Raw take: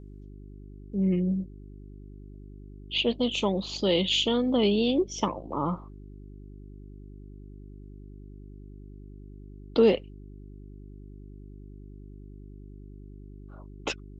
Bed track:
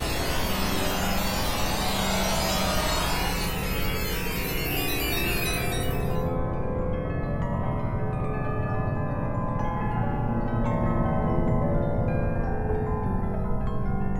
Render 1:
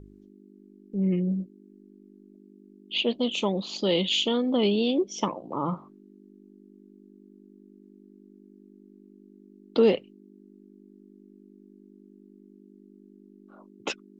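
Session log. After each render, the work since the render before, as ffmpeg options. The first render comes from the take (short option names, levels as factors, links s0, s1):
-af "bandreject=f=50:t=h:w=4,bandreject=f=100:t=h:w=4,bandreject=f=150:t=h:w=4"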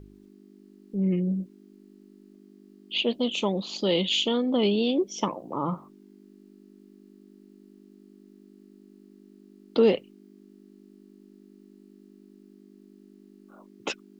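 -af "acrusher=bits=11:mix=0:aa=0.000001"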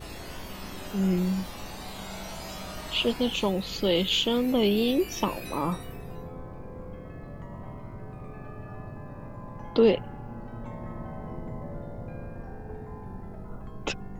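-filter_complex "[1:a]volume=0.211[s0];[0:a][s0]amix=inputs=2:normalize=0"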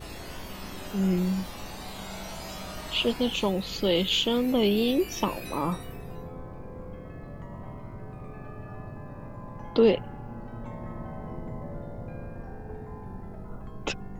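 -af anull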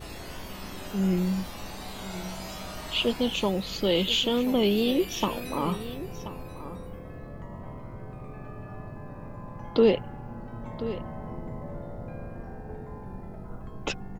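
-af "aecho=1:1:1031:0.211"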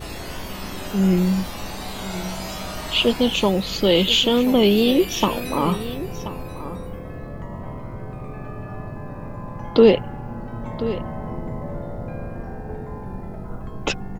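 -af "volume=2.37"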